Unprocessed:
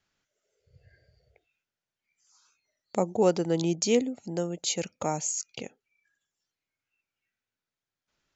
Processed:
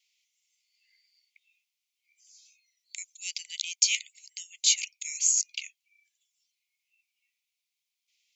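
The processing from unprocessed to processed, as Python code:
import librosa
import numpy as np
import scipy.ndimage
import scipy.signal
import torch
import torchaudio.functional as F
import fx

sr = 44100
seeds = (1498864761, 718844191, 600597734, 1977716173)

y = scipy.signal.sosfilt(scipy.signal.butter(16, 2100.0, 'highpass', fs=sr, output='sos'), x)
y = y * 10.0 ** (7.5 / 20.0)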